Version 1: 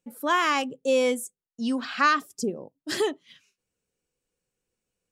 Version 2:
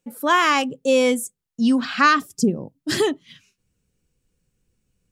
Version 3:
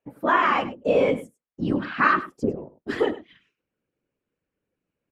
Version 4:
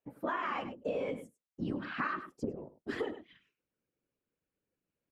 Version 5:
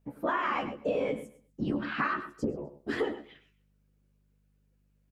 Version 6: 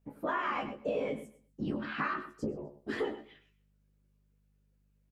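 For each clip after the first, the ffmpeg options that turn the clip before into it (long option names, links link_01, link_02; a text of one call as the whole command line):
ffmpeg -i in.wav -af "asubboost=boost=5.5:cutoff=230,volume=6dB" out.wav
ffmpeg -i in.wav -filter_complex "[0:a]acrossover=split=220 2600:gain=0.0891 1 0.0631[link_01][link_02][link_03];[link_01][link_02][link_03]amix=inputs=3:normalize=0,afftfilt=real='hypot(re,im)*cos(2*PI*random(0))':imag='hypot(re,im)*sin(2*PI*random(1))':win_size=512:overlap=0.75,aecho=1:1:100:0.168,volume=4dB" out.wav
ffmpeg -i in.wav -af "acompressor=threshold=-25dB:ratio=6,volume=-7dB" out.wav
ffmpeg -i in.wav -filter_complex "[0:a]aeval=exprs='val(0)+0.000251*(sin(2*PI*50*n/s)+sin(2*PI*2*50*n/s)/2+sin(2*PI*3*50*n/s)/3+sin(2*PI*4*50*n/s)/4+sin(2*PI*5*50*n/s)/5)':channel_layout=same,asplit=2[link_01][link_02];[link_02]adelay=14,volume=-7dB[link_03];[link_01][link_03]amix=inputs=2:normalize=0,aecho=1:1:128|256:0.106|0.0307,volume=4.5dB" out.wav
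ffmpeg -i in.wav -filter_complex "[0:a]asplit=2[link_01][link_02];[link_02]adelay=19,volume=-7.5dB[link_03];[link_01][link_03]amix=inputs=2:normalize=0,volume=-4dB" out.wav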